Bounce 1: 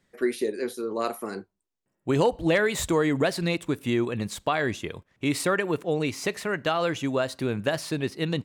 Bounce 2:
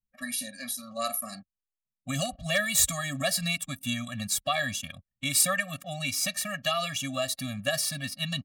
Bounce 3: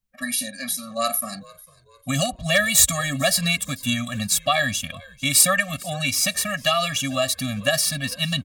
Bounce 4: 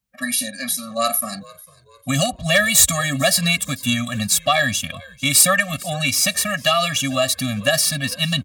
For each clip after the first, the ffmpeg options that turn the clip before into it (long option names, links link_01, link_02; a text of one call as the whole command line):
ffmpeg -i in.wav -af "anlmdn=0.0251,crystalizer=i=7.5:c=0,afftfilt=real='re*eq(mod(floor(b*sr/1024/270),2),0)':imag='im*eq(mod(floor(b*sr/1024/270),2),0)':win_size=1024:overlap=0.75,volume=-5dB" out.wav
ffmpeg -i in.wav -filter_complex "[0:a]areverse,acompressor=mode=upward:threshold=-49dB:ratio=2.5,areverse,asplit=4[link_01][link_02][link_03][link_04];[link_02]adelay=448,afreqshift=-71,volume=-23dB[link_05];[link_03]adelay=896,afreqshift=-142,volume=-30.5dB[link_06];[link_04]adelay=1344,afreqshift=-213,volume=-38.1dB[link_07];[link_01][link_05][link_06][link_07]amix=inputs=4:normalize=0,volume=7.5dB" out.wav
ffmpeg -i in.wav -filter_complex "[0:a]highpass=53,asplit=2[link_01][link_02];[link_02]acontrast=73,volume=1dB[link_03];[link_01][link_03]amix=inputs=2:normalize=0,volume=-7dB" out.wav